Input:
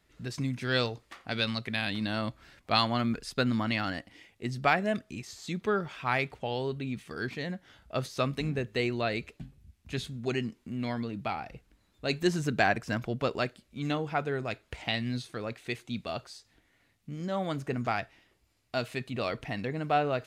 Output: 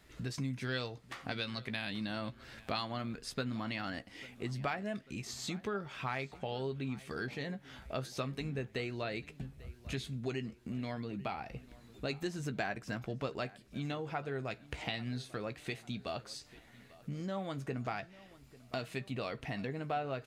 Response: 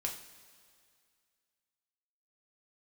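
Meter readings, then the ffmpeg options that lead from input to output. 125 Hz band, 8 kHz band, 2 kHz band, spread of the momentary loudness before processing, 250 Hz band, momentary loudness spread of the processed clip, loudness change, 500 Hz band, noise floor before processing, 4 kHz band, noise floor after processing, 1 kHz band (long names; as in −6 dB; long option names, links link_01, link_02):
−5.5 dB, −2.5 dB, −8.5 dB, 11 LU, −7.0 dB, 8 LU, −8.0 dB, −7.5 dB, −69 dBFS, −8.0 dB, −60 dBFS, −9.0 dB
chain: -filter_complex "[0:a]acompressor=threshold=-47dB:ratio=3,asplit=2[link_01][link_02];[link_02]adelay=15,volume=-11dB[link_03];[link_01][link_03]amix=inputs=2:normalize=0,asplit=2[link_04][link_05];[link_05]adelay=844,lowpass=frequency=4500:poles=1,volume=-20dB,asplit=2[link_06][link_07];[link_07]adelay=844,lowpass=frequency=4500:poles=1,volume=0.5,asplit=2[link_08][link_09];[link_09]adelay=844,lowpass=frequency=4500:poles=1,volume=0.5,asplit=2[link_10][link_11];[link_11]adelay=844,lowpass=frequency=4500:poles=1,volume=0.5[link_12];[link_06][link_08][link_10][link_12]amix=inputs=4:normalize=0[link_13];[link_04][link_13]amix=inputs=2:normalize=0,volume=6.5dB"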